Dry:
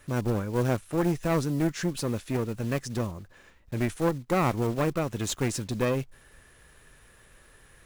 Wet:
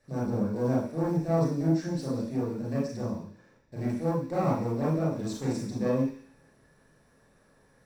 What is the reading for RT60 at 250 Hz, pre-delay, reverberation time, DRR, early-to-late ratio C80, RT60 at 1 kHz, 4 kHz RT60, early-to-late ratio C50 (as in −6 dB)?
0.50 s, 28 ms, 0.50 s, −7.0 dB, 7.5 dB, 0.50 s, 0.85 s, 2.0 dB